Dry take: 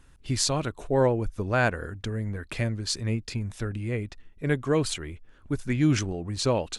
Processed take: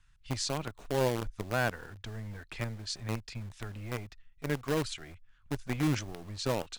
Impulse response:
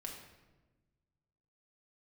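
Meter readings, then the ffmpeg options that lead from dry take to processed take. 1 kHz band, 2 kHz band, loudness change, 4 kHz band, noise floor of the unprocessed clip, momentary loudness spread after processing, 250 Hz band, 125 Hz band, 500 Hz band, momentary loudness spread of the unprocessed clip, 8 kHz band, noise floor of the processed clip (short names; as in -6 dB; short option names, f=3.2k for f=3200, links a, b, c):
-5.5 dB, -6.0 dB, -7.5 dB, -6.5 dB, -54 dBFS, 12 LU, -8.0 dB, -8.0 dB, -7.5 dB, 10 LU, -8.5 dB, -63 dBFS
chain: -filter_complex "[0:a]lowpass=7.1k,equalizer=f=71:t=o:w=0.41:g=-9,acrossover=split=160|1000|2200[a][b][c][d];[b]acrusher=bits=5:dc=4:mix=0:aa=0.000001[e];[a][e][c][d]amix=inputs=4:normalize=0,volume=-7dB"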